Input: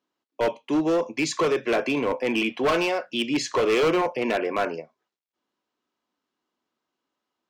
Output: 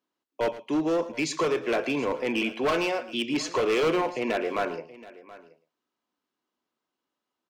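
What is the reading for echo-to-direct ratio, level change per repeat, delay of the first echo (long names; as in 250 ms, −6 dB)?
−14.0 dB, repeats not evenly spaced, 113 ms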